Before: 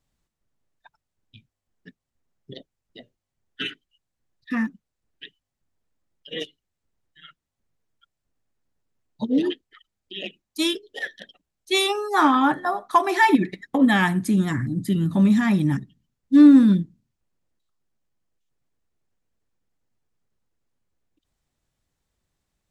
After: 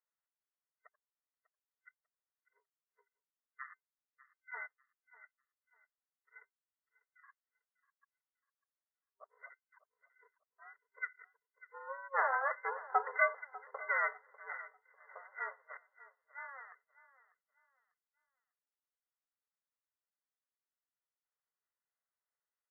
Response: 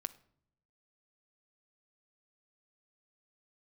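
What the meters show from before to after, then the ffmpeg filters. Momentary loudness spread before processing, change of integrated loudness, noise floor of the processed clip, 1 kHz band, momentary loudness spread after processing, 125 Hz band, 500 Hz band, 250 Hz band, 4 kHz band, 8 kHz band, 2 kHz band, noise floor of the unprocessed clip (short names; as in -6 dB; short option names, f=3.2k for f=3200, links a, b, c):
18 LU, -17.0 dB, under -85 dBFS, -15.0 dB, 23 LU, under -40 dB, -16.0 dB, under -40 dB, under -40 dB, under -35 dB, -10.0 dB, -84 dBFS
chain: -af "aderivative,afftfilt=real='re*between(b*sr/4096,670,1800)':imag='im*between(b*sr/4096,670,1800)':win_size=4096:overlap=0.75,aeval=exprs='val(0)*sin(2*PI*270*n/s)':c=same,aecho=1:1:596|1192|1788:0.126|0.0378|0.0113,volume=6.5dB"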